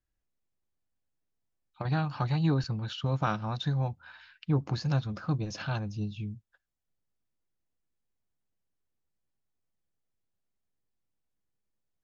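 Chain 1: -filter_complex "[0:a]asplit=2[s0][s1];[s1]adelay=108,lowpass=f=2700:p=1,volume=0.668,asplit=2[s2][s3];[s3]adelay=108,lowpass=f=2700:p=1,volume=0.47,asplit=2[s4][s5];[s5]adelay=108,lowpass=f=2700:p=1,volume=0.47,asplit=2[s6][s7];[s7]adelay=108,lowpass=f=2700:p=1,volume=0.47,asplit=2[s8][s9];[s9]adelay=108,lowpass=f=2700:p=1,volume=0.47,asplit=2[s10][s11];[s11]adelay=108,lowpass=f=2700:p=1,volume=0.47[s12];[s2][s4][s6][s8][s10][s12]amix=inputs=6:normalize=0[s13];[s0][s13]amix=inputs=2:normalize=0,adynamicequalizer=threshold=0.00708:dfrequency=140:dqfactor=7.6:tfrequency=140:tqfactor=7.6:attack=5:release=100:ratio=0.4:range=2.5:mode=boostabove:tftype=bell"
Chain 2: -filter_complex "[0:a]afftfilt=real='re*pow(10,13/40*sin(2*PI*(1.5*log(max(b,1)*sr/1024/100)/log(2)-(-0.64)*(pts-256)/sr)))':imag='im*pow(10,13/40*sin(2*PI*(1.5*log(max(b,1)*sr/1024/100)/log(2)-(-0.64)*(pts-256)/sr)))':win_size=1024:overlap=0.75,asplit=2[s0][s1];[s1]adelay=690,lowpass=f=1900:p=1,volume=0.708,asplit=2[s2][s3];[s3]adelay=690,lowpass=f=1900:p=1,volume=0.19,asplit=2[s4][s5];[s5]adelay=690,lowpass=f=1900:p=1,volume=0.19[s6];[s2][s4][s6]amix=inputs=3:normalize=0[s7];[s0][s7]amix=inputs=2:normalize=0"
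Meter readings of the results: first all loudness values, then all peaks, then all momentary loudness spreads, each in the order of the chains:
-28.0 LUFS, -29.5 LUFS; -13.0 dBFS, -11.5 dBFS; 12 LU, 13 LU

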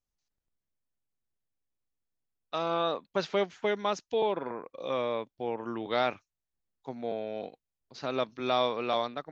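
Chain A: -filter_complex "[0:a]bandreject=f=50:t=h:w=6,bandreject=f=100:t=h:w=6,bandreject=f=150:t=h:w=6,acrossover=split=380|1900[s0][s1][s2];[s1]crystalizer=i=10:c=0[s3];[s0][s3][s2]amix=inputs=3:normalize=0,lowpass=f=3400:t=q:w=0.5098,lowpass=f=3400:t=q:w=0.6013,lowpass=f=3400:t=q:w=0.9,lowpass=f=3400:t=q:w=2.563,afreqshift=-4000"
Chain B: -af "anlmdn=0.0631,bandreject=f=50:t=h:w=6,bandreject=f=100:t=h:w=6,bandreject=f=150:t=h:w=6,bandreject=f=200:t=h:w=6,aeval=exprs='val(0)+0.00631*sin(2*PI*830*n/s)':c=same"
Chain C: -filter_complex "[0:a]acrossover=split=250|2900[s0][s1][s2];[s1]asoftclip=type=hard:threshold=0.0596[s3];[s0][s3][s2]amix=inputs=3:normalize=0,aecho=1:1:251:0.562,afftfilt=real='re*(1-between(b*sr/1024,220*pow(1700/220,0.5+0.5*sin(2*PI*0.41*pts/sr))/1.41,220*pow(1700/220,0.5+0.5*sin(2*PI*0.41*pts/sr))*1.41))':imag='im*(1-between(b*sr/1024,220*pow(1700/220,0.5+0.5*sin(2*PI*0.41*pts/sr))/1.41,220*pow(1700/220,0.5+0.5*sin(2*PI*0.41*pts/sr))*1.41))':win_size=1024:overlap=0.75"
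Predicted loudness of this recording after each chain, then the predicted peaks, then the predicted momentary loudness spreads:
-26.5 LUFS, -32.0 LUFS, -33.5 LUFS; -12.0 dBFS, -14.5 dBFS, -18.0 dBFS; 11 LU, 18 LU, 11 LU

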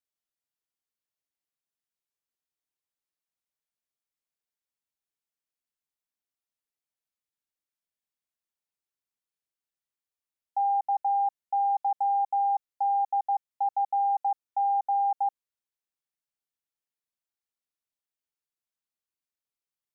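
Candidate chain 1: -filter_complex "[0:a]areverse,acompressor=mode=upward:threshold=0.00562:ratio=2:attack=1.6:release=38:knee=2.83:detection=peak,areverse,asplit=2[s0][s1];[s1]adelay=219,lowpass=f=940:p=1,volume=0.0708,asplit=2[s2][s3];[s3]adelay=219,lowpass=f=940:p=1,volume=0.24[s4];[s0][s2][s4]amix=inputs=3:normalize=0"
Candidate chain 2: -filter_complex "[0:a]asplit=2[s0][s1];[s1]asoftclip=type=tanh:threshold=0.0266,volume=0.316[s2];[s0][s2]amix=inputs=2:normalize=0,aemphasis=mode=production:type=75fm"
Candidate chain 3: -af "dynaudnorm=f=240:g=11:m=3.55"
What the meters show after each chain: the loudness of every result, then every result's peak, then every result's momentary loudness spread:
-27.5 LUFS, -27.0 LUFS, -16.5 LUFS; -21.5 dBFS, -21.0 dBFS, -10.5 dBFS; 4 LU, 5 LU, 5 LU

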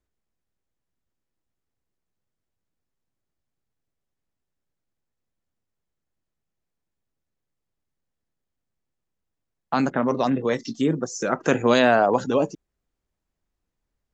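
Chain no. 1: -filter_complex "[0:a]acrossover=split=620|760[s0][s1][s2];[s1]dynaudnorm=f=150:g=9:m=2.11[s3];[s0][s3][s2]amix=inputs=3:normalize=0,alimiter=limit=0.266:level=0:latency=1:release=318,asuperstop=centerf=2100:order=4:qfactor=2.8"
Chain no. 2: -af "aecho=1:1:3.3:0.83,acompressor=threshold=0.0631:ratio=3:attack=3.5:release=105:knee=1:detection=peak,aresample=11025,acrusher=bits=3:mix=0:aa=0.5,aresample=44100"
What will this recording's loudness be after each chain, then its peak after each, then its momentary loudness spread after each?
-24.0 LUFS, -27.0 LUFS; -10.5 dBFS, -11.0 dBFS; 6 LU, 6 LU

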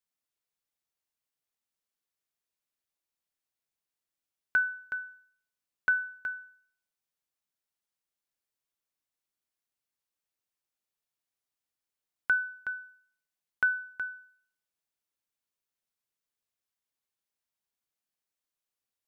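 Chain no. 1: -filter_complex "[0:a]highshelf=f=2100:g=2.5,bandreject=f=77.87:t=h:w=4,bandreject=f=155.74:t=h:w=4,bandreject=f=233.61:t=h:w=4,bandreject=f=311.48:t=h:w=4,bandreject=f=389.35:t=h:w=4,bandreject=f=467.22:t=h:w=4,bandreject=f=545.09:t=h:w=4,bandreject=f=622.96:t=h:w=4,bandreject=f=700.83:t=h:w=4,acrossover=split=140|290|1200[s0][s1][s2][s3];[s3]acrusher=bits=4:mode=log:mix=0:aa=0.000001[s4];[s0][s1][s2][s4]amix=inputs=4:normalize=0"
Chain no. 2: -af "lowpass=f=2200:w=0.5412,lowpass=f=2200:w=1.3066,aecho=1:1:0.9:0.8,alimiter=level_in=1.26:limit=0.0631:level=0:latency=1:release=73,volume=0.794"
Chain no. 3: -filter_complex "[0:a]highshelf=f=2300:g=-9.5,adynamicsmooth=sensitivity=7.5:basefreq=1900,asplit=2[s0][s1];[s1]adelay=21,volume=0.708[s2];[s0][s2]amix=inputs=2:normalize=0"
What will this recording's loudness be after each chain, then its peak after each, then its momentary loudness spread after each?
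-31.0 LUFS, -36.0 LUFS, -38.5 LUFS; -16.0 dBFS, -26.0 dBFS, -20.0 dBFS; 12 LU, 12 LU, 10 LU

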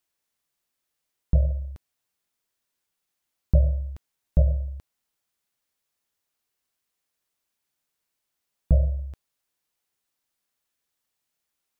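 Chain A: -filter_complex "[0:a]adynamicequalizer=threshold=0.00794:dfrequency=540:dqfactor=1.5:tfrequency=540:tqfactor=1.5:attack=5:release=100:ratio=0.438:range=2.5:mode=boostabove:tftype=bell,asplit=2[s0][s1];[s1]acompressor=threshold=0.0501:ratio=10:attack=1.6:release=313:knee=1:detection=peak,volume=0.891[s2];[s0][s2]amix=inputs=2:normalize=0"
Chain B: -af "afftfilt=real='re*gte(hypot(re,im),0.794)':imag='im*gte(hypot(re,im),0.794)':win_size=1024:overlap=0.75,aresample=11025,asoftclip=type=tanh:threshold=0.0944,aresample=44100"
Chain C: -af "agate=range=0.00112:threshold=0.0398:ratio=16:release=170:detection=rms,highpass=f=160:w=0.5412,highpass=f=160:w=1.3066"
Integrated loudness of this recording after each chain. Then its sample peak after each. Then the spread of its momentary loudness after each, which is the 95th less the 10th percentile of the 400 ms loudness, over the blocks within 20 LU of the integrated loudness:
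-24.0 LUFS, -31.0 LUFS, -36.0 LUFS; -6.5 dBFS, -20.5 dBFS, -15.0 dBFS; 14 LU, 7 LU, 13 LU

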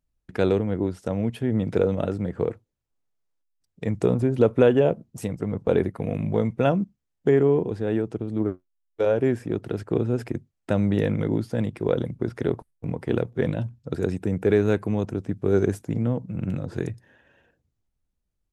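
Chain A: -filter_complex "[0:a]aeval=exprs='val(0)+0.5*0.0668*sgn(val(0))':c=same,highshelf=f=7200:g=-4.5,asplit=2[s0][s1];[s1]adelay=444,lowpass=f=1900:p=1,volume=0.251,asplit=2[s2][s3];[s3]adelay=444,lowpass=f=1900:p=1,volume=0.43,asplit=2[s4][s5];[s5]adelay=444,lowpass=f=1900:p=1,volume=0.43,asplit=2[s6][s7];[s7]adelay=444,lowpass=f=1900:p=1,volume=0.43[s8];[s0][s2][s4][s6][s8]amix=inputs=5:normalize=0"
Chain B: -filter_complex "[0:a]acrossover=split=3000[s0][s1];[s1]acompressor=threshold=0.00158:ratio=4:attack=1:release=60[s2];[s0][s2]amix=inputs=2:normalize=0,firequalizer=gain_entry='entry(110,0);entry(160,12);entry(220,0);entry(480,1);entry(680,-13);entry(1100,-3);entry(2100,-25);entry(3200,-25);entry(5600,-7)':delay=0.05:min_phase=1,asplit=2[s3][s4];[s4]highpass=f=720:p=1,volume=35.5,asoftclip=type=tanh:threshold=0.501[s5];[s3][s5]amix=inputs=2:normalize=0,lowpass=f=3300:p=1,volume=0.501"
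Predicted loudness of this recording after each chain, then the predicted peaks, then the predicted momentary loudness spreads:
-22.5 LUFS, -16.0 LUFS; -5.5 dBFS, -6.0 dBFS; 11 LU, 6 LU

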